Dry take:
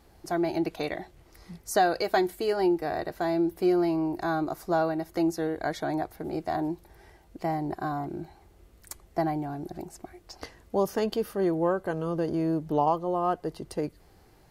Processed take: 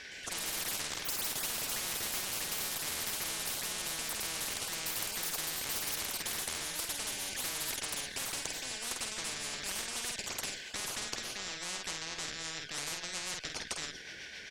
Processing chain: four frequency bands reordered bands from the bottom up 4123; rotary cabinet horn 0.9 Hz, later 7.5 Hz, at 11.77 s; valve stage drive 28 dB, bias 0.4; resonant low-pass 5.3 kHz, resonance Q 1.8; peaking EQ 440 Hz +6 dB; ever faster or slower copies 115 ms, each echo +5 st, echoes 3; peaking EQ 1.5 kHz -3 dB 1.7 oct; doubling 49 ms -8.5 dB; spectrum-flattening compressor 10:1

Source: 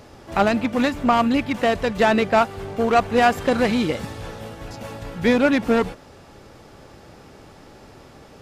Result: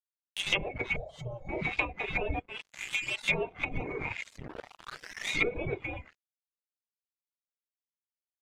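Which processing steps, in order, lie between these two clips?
split-band scrambler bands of 2 kHz; three bands offset in time highs, lows, mids 100/160 ms, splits 280/3700 Hz; 4.36 s: tape start 0.96 s; simulated room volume 40 m³, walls mixed, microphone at 0.47 m; 2.39–3.28 s: compression 16:1, threshold -24 dBFS, peak gain reduction 13 dB; crossover distortion -30.5 dBFS; low-pass that closes with the level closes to 600 Hz, closed at -17 dBFS; 0.96–1.49 s: FFT filter 150 Hz 0 dB, 320 Hz -18 dB, 550 Hz +2 dB, 2.6 kHz -28 dB, 3.9 kHz -3 dB, 6.2 kHz +2 dB; reverb removal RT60 0.57 s

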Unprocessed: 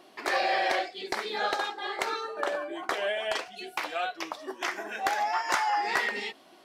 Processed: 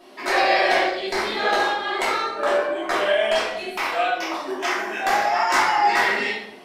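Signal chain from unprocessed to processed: simulated room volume 240 m³, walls mixed, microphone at 2.8 m

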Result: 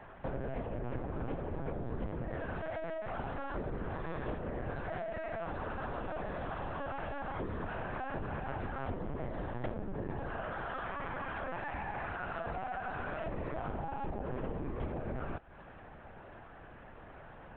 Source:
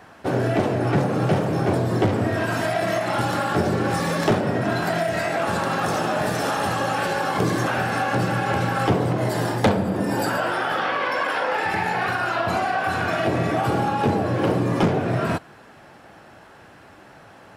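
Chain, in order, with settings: compression 6:1, threshold -32 dBFS, peak gain reduction 16.5 dB; distance through air 390 m; LPC vocoder at 8 kHz pitch kept; trim -3 dB

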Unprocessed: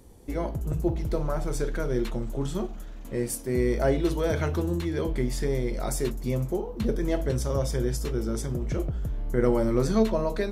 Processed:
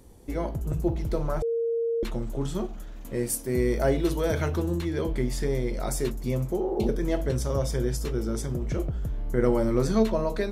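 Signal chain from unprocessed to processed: 1.42–2.03 s: bleep 462 Hz -23.5 dBFS; 2.95–4.50 s: treble shelf 9.4 kHz +7 dB; 6.62–6.84 s: spectral replace 240–2100 Hz before

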